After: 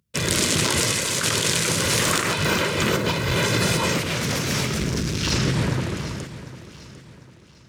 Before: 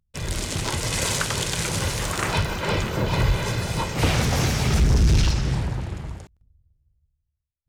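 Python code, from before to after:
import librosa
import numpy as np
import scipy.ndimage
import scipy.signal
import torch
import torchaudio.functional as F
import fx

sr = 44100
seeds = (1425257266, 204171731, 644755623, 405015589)

y = scipy.signal.sosfilt(scipy.signal.butter(2, 160.0, 'highpass', fs=sr, output='sos'), x)
y = fx.peak_eq(y, sr, hz=790.0, db=-10.0, octaves=0.44)
y = fx.over_compress(y, sr, threshold_db=-30.0, ratio=-1.0)
y = fx.echo_feedback(y, sr, ms=749, feedback_pct=38, wet_db=-15.0)
y = y * 10.0 ** (7.5 / 20.0)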